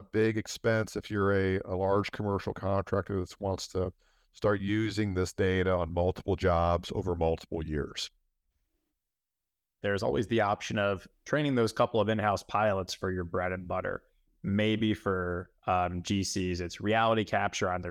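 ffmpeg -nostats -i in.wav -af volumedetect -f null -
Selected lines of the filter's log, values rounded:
mean_volume: -30.5 dB
max_volume: -13.5 dB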